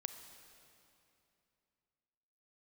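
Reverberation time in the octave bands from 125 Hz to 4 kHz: 3.2, 3.1, 2.8, 2.7, 2.6, 2.4 seconds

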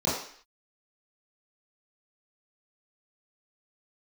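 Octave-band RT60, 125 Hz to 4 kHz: 0.35, 0.50, 0.50, 0.55, 0.65, 0.60 seconds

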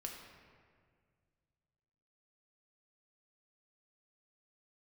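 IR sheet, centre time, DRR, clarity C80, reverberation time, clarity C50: 60 ms, 0.5 dB, 5.0 dB, 1.9 s, 3.5 dB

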